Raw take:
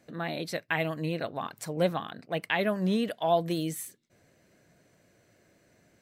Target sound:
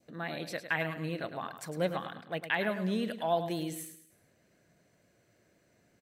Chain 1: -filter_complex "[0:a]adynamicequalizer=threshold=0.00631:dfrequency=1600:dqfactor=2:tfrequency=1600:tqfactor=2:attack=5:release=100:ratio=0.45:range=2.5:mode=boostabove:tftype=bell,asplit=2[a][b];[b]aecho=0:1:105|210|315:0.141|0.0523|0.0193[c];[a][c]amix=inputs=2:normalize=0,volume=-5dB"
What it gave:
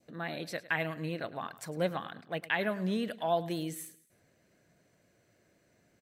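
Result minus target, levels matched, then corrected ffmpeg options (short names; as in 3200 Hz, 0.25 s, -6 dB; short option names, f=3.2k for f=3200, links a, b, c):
echo-to-direct -7 dB
-filter_complex "[0:a]adynamicequalizer=threshold=0.00631:dfrequency=1600:dqfactor=2:tfrequency=1600:tqfactor=2:attack=5:release=100:ratio=0.45:range=2.5:mode=boostabove:tftype=bell,asplit=2[a][b];[b]aecho=0:1:105|210|315|420:0.316|0.117|0.0433|0.016[c];[a][c]amix=inputs=2:normalize=0,volume=-5dB"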